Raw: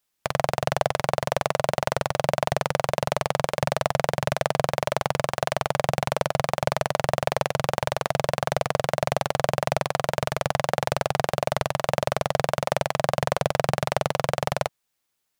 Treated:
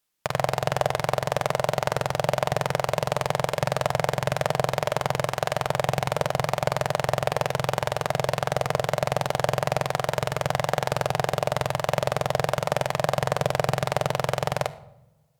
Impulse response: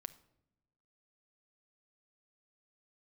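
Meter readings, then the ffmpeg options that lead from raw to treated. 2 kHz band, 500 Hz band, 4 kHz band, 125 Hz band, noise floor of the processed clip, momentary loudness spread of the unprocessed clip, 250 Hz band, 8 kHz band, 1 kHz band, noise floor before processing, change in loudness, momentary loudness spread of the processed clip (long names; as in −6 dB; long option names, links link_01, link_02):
−0.5 dB, −0.5 dB, −0.5 dB, +1.5 dB, −48 dBFS, 1 LU, −0.5 dB, −0.5 dB, −0.5 dB, −78 dBFS, 0.0 dB, 1 LU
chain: -filter_complex "[1:a]atrim=start_sample=2205,asetrate=40131,aresample=44100[link_01];[0:a][link_01]afir=irnorm=-1:irlink=0,volume=3.5dB"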